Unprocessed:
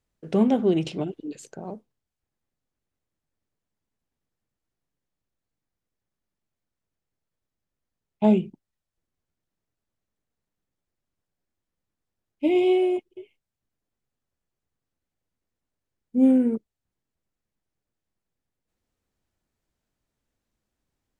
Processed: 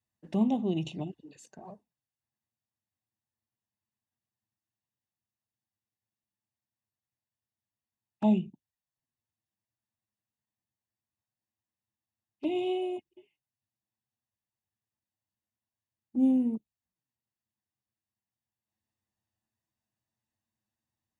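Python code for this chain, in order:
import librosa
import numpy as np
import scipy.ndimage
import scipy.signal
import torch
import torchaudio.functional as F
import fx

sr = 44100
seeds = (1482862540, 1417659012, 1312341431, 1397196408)

y = scipy.signal.sosfilt(scipy.signal.butter(2, 81.0, 'highpass', fs=sr, output='sos'), x)
y = y + 0.57 * np.pad(y, (int(1.1 * sr / 1000.0), 0))[:len(y)]
y = fx.env_flanger(y, sr, rest_ms=9.2, full_db=-24.5)
y = y * librosa.db_to_amplitude(-6.5)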